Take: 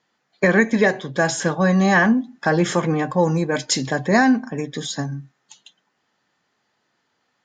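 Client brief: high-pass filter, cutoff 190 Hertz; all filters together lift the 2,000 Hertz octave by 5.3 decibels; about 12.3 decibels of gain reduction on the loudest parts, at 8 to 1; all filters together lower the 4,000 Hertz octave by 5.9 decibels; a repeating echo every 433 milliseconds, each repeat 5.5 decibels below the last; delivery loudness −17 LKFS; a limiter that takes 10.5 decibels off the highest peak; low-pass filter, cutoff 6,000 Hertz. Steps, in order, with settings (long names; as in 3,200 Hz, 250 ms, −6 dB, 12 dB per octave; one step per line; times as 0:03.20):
high-pass filter 190 Hz
low-pass filter 6,000 Hz
parametric band 2,000 Hz +8 dB
parametric band 4,000 Hz −8.5 dB
downward compressor 8 to 1, threshold −22 dBFS
brickwall limiter −21 dBFS
repeating echo 433 ms, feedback 53%, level −5.5 dB
level +12.5 dB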